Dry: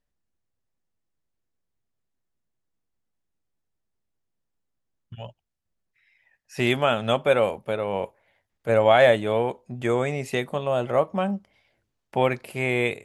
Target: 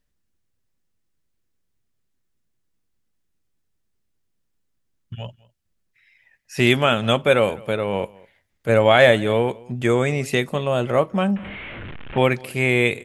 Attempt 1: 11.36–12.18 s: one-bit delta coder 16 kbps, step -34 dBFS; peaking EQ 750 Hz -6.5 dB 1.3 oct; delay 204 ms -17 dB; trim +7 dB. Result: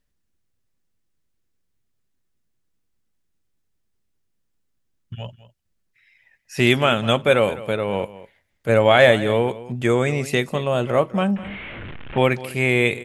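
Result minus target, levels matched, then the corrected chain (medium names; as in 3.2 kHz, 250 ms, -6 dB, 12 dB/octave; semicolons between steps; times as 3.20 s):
echo-to-direct +7 dB
11.36–12.18 s: one-bit delta coder 16 kbps, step -34 dBFS; peaking EQ 750 Hz -6.5 dB 1.3 oct; delay 204 ms -24 dB; trim +7 dB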